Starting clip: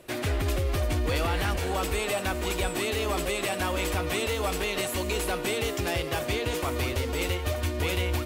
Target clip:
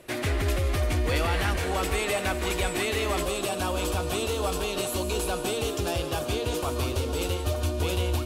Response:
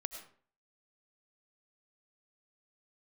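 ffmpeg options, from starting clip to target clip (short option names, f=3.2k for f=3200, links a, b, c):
-filter_complex "[0:a]asetnsamples=n=441:p=0,asendcmd='3.23 equalizer g -14',equalizer=f=2k:t=o:w=0.43:g=2.5[a];[1:a]atrim=start_sample=2205,atrim=end_sample=4410,asetrate=24696,aresample=44100[b];[a][b]afir=irnorm=-1:irlink=0"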